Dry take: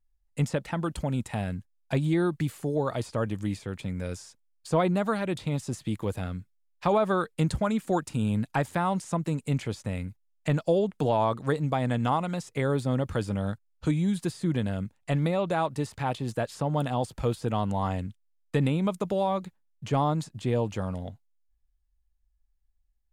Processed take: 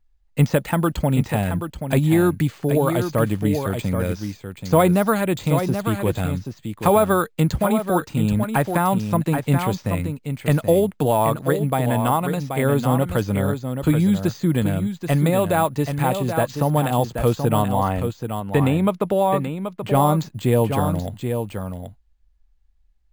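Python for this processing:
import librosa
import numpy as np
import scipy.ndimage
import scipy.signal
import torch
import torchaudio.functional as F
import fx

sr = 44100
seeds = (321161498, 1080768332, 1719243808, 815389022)

y = np.repeat(scipy.signal.resample_poly(x, 1, 4), 4)[:len(x)]
y = fx.bass_treble(y, sr, bass_db=-3, treble_db=-8, at=(17.62, 19.95))
y = y + 10.0 ** (-7.5 / 20.0) * np.pad(y, (int(780 * sr / 1000.0), 0))[:len(y)]
y = fx.rider(y, sr, range_db=3, speed_s=2.0)
y = F.gain(torch.from_numpy(y), 7.5).numpy()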